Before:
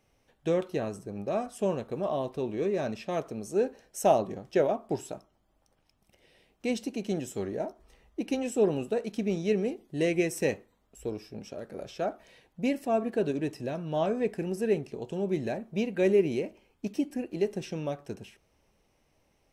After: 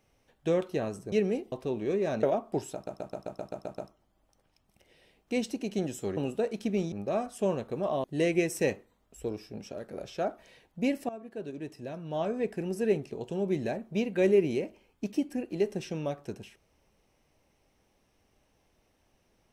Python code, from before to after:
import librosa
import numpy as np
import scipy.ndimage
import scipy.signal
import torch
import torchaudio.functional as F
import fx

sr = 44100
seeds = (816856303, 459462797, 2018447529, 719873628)

y = fx.edit(x, sr, fx.swap(start_s=1.12, length_s=1.12, other_s=9.45, other_length_s=0.4),
    fx.cut(start_s=2.95, length_s=1.65),
    fx.stutter(start_s=5.11, slice_s=0.13, count=9),
    fx.cut(start_s=7.5, length_s=1.2),
    fx.fade_in_from(start_s=12.9, length_s=1.78, floor_db=-17.5), tone=tone)